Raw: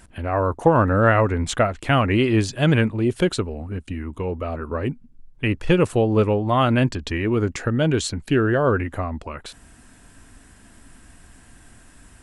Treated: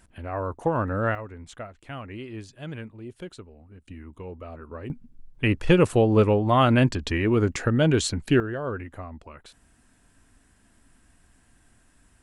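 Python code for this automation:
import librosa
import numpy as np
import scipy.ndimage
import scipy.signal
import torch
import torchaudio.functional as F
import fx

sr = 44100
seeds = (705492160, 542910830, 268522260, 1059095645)

y = fx.gain(x, sr, db=fx.steps((0.0, -8.5), (1.15, -19.0), (3.82, -12.0), (4.9, -0.5), (8.4, -11.5)))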